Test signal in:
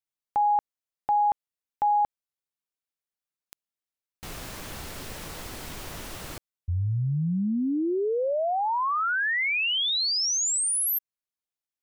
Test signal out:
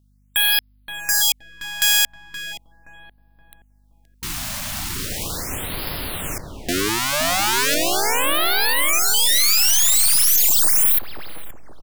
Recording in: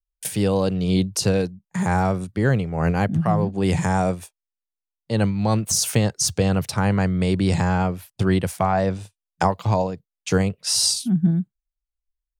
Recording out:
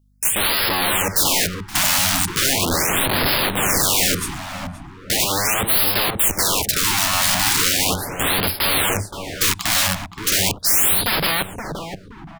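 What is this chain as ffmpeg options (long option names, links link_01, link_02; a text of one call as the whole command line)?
ffmpeg -i in.wav -filter_complex "[0:a]aeval=exprs='0.562*(cos(1*acos(clip(val(0)/0.562,-1,1)))-cos(1*PI/2))+0.0158*(cos(2*acos(clip(val(0)/0.562,-1,1)))-cos(2*PI/2))+0.0398*(cos(6*acos(clip(val(0)/0.562,-1,1)))-cos(6*PI/2))+0.0112*(cos(7*acos(clip(val(0)/0.562,-1,1)))-cos(7*PI/2))+0.0631*(cos(8*acos(clip(val(0)/0.562,-1,1)))-cos(8*PI/2))':channel_layout=same,lowshelf=frequency=370:gain=2.5,acontrast=81,aeval=exprs='(mod(8.41*val(0)+1,2)-1)/8.41':channel_layout=same,highshelf=frequency=2200:gain=9,aeval=exprs='val(0)+0.00141*(sin(2*PI*50*n/s)+sin(2*PI*2*50*n/s)/2+sin(2*PI*3*50*n/s)/3+sin(2*PI*4*50*n/s)/4+sin(2*PI*5*50*n/s)/5)':channel_layout=same,asplit=2[link_01][link_02];[link_02]adelay=523,lowpass=frequency=850:poles=1,volume=-3dB,asplit=2[link_03][link_04];[link_04]adelay=523,lowpass=frequency=850:poles=1,volume=0.49,asplit=2[link_05][link_06];[link_06]adelay=523,lowpass=frequency=850:poles=1,volume=0.49,asplit=2[link_07][link_08];[link_08]adelay=523,lowpass=frequency=850:poles=1,volume=0.49,asplit=2[link_09][link_10];[link_10]adelay=523,lowpass=frequency=850:poles=1,volume=0.49,asplit=2[link_11][link_12];[link_12]adelay=523,lowpass=frequency=850:poles=1,volume=0.49[link_13];[link_03][link_05][link_07][link_09][link_11][link_13]amix=inputs=6:normalize=0[link_14];[link_01][link_14]amix=inputs=2:normalize=0,afftfilt=real='re*(1-between(b*sr/1024,380*pow(7500/380,0.5+0.5*sin(2*PI*0.38*pts/sr))/1.41,380*pow(7500/380,0.5+0.5*sin(2*PI*0.38*pts/sr))*1.41))':imag='im*(1-between(b*sr/1024,380*pow(7500/380,0.5+0.5*sin(2*PI*0.38*pts/sr))/1.41,380*pow(7500/380,0.5+0.5*sin(2*PI*0.38*pts/sr))*1.41))':win_size=1024:overlap=0.75" out.wav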